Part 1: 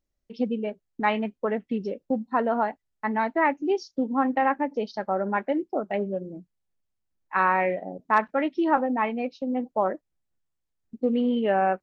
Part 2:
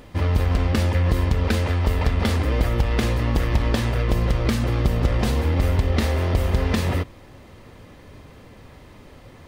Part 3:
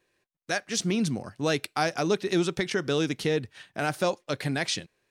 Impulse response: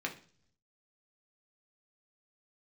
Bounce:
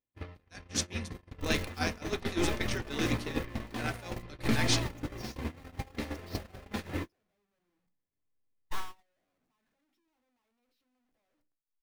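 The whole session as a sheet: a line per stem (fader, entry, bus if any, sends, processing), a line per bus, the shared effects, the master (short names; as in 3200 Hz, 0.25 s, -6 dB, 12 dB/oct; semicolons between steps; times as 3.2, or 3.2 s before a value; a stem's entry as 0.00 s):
-13.0 dB, 1.40 s, no bus, send -3.5 dB, infinite clipping; low shelf 66 Hz +10.5 dB
-3.5 dB, 0.00 s, bus A, send -3.5 dB, gate -36 dBFS, range -7 dB; compressor 3:1, threshold -23 dBFS, peak gain reduction 7.5 dB
-5.5 dB, 0.00 s, bus A, send -7.5 dB, HPF 76 Hz 24 dB/oct; high shelf 2400 Hz +11 dB; three-band expander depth 40%
bus A: 0.0 dB, limiter -24 dBFS, peak gain reduction 16.5 dB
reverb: on, RT60 0.50 s, pre-delay 3 ms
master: gate -25 dBFS, range -45 dB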